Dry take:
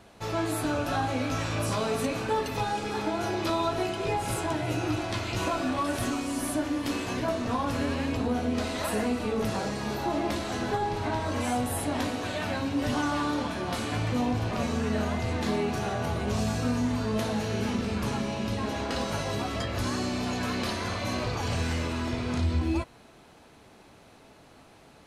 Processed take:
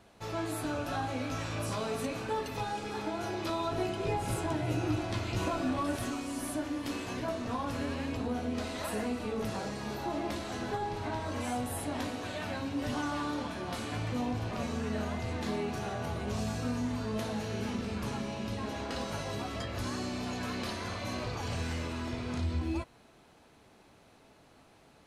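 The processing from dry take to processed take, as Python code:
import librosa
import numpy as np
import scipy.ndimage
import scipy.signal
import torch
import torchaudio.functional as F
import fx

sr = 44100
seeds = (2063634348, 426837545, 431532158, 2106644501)

y = fx.low_shelf(x, sr, hz=460.0, db=5.5, at=(3.71, 5.96))
y = F.gain(torch.from_numpy(y), -6.0).numpy()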